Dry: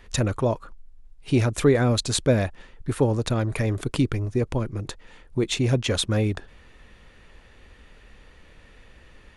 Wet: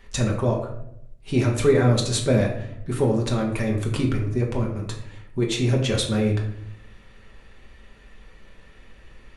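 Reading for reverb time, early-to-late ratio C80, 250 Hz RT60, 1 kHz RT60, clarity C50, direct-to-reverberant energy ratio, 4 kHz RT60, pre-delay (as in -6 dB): 0.75 s, 9.5 dB, 1.0 s, 0.65 s, 6.5 dB, -1.0 dB, 0.45 s, 4 ms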